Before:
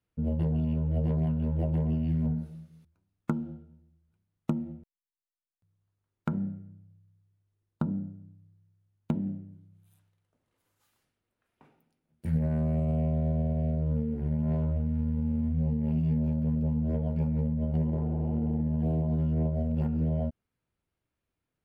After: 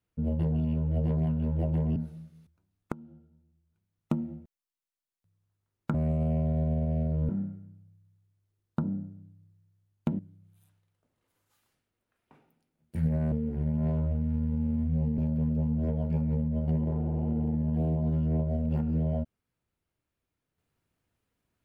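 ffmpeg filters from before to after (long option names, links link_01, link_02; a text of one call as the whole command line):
ffmpeg -i in.wav -filter_complex "[0:a]asplit=8[link_01][link_02][link_03][link_04][link_05][link_06][link_07][link_08];[link_01]atrim=end=1.962[link_09];[link_02]atrim=start=2.338:end=3.3,asetpts=PTS-STARTPTS,afade=type=out:start_time=0.958:duration=0.004:curve=hsin:silence=0.11885[link_10];[link_03]atrim=start=3.3:end=6.322,asetpts=PTS-STARTPTS,afade=type=in:duration=1.2:silence=0.11885[link_11];[link_04]atrim=start=12.618:end=13.972[link_12];[link_05]atrim=start=6.318:end=9.222[link_13];[link_06]atrim=start=9.488:end=12.622[link_14];[link_07]atrim=start=13.968:end=15.832[link_15];[link_08]atrim=start=16.238[link_16];[link_10][link_11]concat=n=2:v=0:a=1[link_17];[link_09][link_17]acrossfade=duration=0.004:curve1=hsin:curve2=hsin[link_18];[link_18][link_12]acrossfade=duration=0.004:curve1=hsin:curve2=hsin[link_19];[link_19][link_13]acrossfade=duration=0.004:curve1=hsin:curve2=hsin[link_20];[link_20][link_14]acrossfade=duration=0.004:curve1=hsin:curve2=hsin[link_21];[link_21][link_15]acrossfade=duration=0.004:curve1=hsin:curve2=hsin[link_22];[link_22][link_16]acrossfade=duration=0.004:curve1=hsin:curve2=hsin" out.wav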